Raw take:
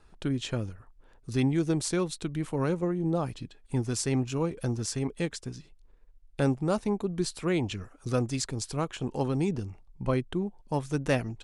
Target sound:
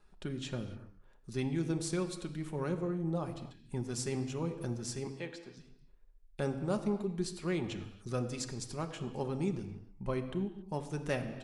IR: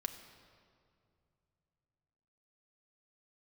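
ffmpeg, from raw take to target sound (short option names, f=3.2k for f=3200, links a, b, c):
-filter_complex "[0:a]asettb=1/sr,asplit=3[a][b][c];[a]atrim=end=5.074[d];[b]atrim=start=5.07:end=5.57,asetpts=PTS-STARTPTS,afade=t=in:d=0.004:c=qsin,afade=t=out:st=0.496:d=0.004:c=qsin,acrossover=split=300 4600:gain=0.178 1 0.178[e][f][g];[e][f][g]amix=inputs=3:normalize=0[h];[c]atrim=start=5.566[i];[d][h]acrossfade=d=0.004:c1=hsin:c2=qsin[j];[j][i]acrossfade=d=0.004:c1=qsin:c2=hsin[k];[1:a]atrim=start_sample=2205,afade=t=out:st=0.34:d=0.01,atrim=end_sample=15435[l];[k][l]afir=irnorm=-1:irlink=0,volume=-6dB"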